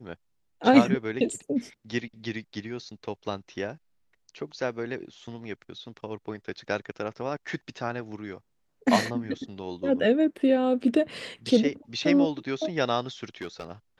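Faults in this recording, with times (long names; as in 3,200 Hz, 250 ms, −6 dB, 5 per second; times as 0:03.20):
0:13.42–0:13.70: clipping −28.5 dBFS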